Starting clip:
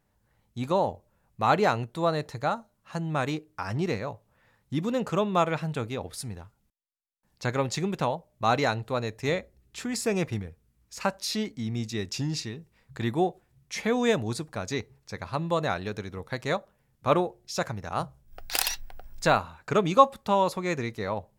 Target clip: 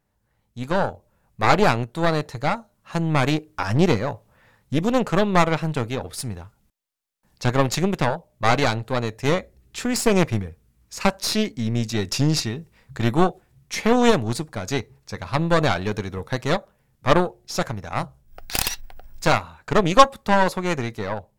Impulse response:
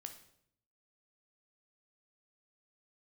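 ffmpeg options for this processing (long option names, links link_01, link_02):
-af "aeval=exprs='0.631*(cos(1*acos(clip(val(0)/0.631,-1,1)))-cos(1*PI/2))+0.1*(cos(8*acos(clip(val(0)/0.631,-1,1)))-cos(8*PI/2))':channel_layout=same,dynaudnorm=framelen=540:gausssize=3:maxgain=11.5dB,volume=-1dB"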